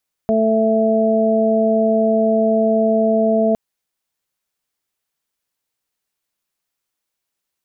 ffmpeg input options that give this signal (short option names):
-f lavfi -i "aevalsrc='0.141*sin(2*PI*221*t)+0.106*sin(2*PI*442*t)+0.168*sin(2*PI*663*t)':d=3.26:s=44100"